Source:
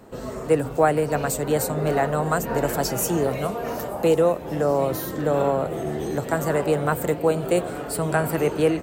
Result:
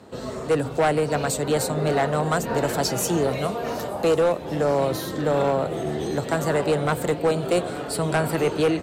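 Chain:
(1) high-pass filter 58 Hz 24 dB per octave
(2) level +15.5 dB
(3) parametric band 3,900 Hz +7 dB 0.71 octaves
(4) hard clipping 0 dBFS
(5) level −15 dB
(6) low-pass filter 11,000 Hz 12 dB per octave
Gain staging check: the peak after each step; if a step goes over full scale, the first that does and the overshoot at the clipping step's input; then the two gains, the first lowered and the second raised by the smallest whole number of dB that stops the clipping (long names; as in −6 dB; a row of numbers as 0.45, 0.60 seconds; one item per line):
−6.5, +9.0, +9.0, 0.0, −15.0, −14.0 dBFS
step 2, 9.0 dB
step 2 +6.5 dB, step 5 −6 dB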